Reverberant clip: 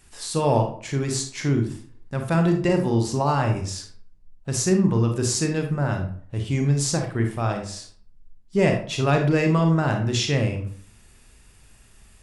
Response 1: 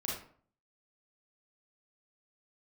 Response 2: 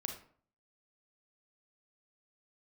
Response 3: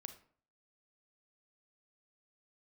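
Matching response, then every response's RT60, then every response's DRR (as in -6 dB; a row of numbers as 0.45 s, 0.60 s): 2; 0.50 s, 0.50 s, 0.50 s; -4.5 dB, 3.5 dB, 8.5 dB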